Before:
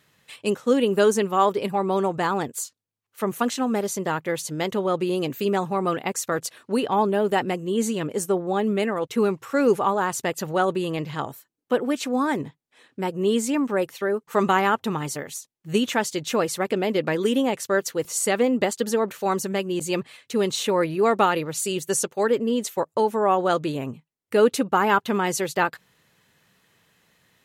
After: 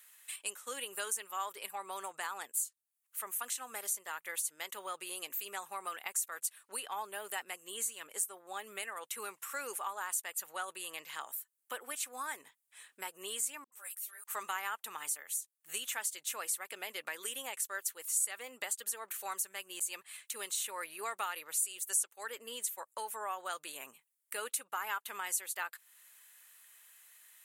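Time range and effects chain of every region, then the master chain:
13.64–14.24 differentiator + dispersion highs, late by 80 ms, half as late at 380 Hz + ensemble effect
whole clip: HPF 1400 Hz 12 dB/oct; resonant high shelf 6900 Hz +11 dB, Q 1.5; compressor 2:1, threshold -43 dBFS

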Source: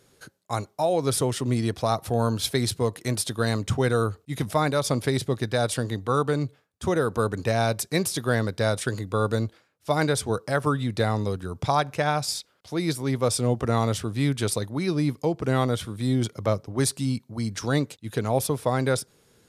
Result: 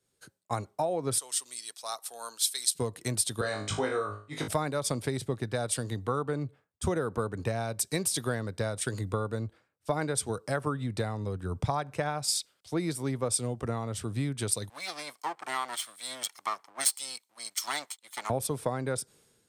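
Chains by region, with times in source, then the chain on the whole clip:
1.18–2.75 HPF 1400 Hz + bell 2200 Hz -8.5 dB 1.6 oct
3.41–4.48 three-band isolator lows -12 dB, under 340 Hz, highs -19 dB, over 7900 Hz + flutter echo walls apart 3.3 m, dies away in 0.36 s
14.69–18.3 minimum comb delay 0.92 ms + HPF 960 Hz
whole clip: bell 8400 Hz +8.5 dB 0.2 oct; compressor 12:1, threshold -29 dBFS; three-band expander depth 70%; gain +2 dB

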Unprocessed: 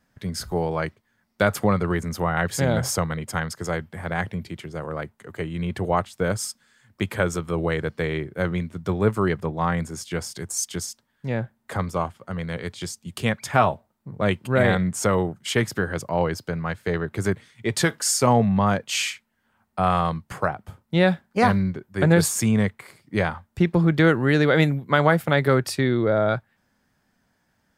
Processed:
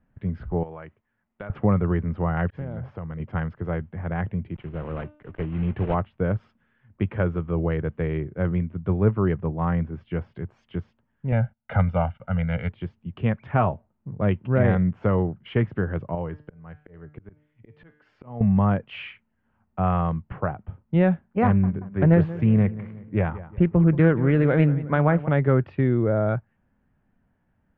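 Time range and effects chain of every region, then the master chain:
0.63–1.5 low shelf 370 Hz -10.5 dB + compressor 2.5:1, threshold -34 dBFS
2.5–3.2 expander -27 dBFS + high shelf 6000 Hz -8.5 dB + compressor 4:1, threshold -31 dBFS
4.55–5.95 block floating point 3-bit + de-hum 300.2 Hz, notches 32
11.32–12.69 gate -54 dBFS, range -18 dB + bell 3400 Hz +8 dB 2.9 oct + comb 1.4 ms, depth 87%
16.15–18.41 resonator 150 Hz, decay 0.44 s + auto swell 0.429 s
21.45–25.28 darkening echo 0.182 s, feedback 48%, low-pass 2500 Hz, level -16 dB + Doppler distortion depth 0.19 ms
whole clip: Chebyshev low-pass 2900 Hz, order 4; tilt -3 dB/oct; gain -5 dB

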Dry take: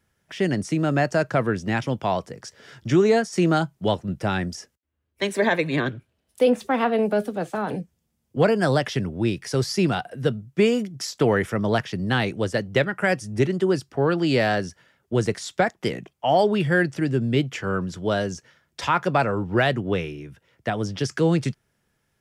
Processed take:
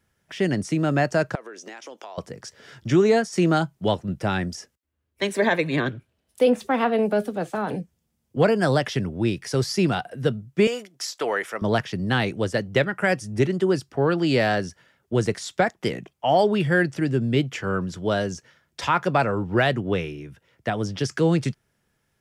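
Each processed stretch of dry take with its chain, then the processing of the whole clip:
1.35–2.18 HPF 350 Hz 24 dB/oct + bell 6200 Hz +9.5 dB 0.38 oct + compressor 12:1, threshold -35 dBFS
10.67–11.62 HPF 580 Hz + de-esser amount 30%
whole clip: dry

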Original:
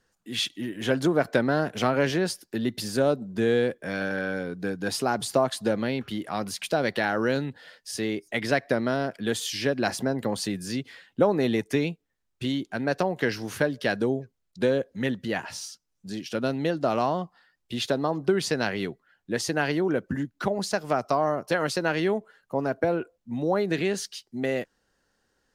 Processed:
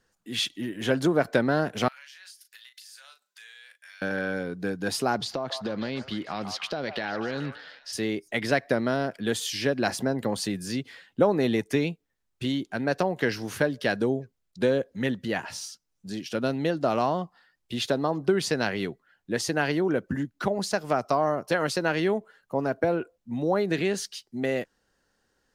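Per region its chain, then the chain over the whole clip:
1.88–4.02 Bessel high-pass 2300 Hz, order 4 + compressor 8:1, threshold -45 dBFS + doubler 37 ms -8.5 dB
5.17–7.93 resonant high shelf 6900 Hz -12 dB, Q 1.5 + compressor, threshold -26 dBFS + delay with a stepping band-pass 0.148 s, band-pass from 890 Hz, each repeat 0.7 oct, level -5.5 dB
whole clip: dry

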